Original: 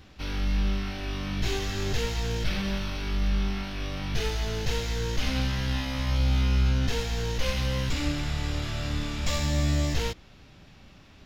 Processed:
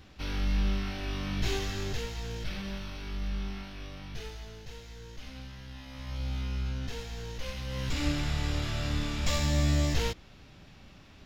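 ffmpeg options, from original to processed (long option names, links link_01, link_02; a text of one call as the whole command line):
ffmpeg -i in.wav -af "volume=14dB,afade=type=out:start_time=1.55:duration=0.53:silence=0.501187,afade=type=out:start_time=3.56:duration=1.08:silence=0.354813,afade=type=in:start_time=5.75:duration=0.51:silence=0.446684,afade=type=in:start_time=7.66:duration=0.42:silence=0.354813" out.wav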